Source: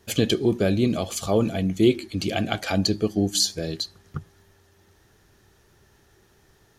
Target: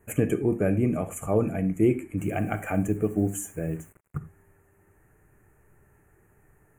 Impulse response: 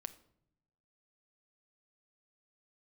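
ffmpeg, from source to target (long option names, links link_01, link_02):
-filter_complex "[1:a]atrim=start_sample=2205,atrim=end_sample=3969,asetrate=39249,aresample=44100[link_01];[0:a][link_01]afir=irnorm=-1:irlink=0,asplit=3[link_02][link_03][link_04];[link_02]afade=type=out:start_time=2.17:duration=0.02[link_05];[link_03]acrusher=bits=7:mix=0:aa=0.5,afade=type=in:start_time=2.17:duration=0.02,afade=type=out:start_time=4.17:duration=0.02[link_06];[link_04]afade=type=in:start_time=4.17:duration=0.02[link_07];[link_05][link_06][link_07]amix=inputs=3:normalize=0,asuperstop=centerf=4300:order=8:qfactor=0.86,lowshelf=frequency=140:gain=4"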